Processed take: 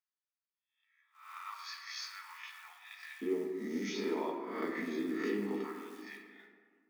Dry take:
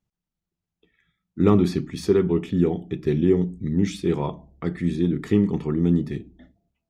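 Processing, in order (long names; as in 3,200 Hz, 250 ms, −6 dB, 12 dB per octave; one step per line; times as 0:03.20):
peak hold with a rise ahead of every peak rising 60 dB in 0.55 s
brickwall limiter −13 dBFS, peak gain reduction 8.5 dB
Chebyshev low-pass with heavy ripple 6,600 Hz, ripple 6 dB
noise gate −53 dBFS, range −9 dB
downward compressor 2 to 1, threshold −36 dBFS, peak gain reduction 7.5 dB
floating-point word with a short mantissa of 4 bits
Butterworth high-pass 950 Hz 48 dB per octave, from 0:03.21 230 Hz, from 0:05.62 790 Hz
convolution reverb RT60 1.9 s, pre-delay 4 ms, DRR 1.5 dB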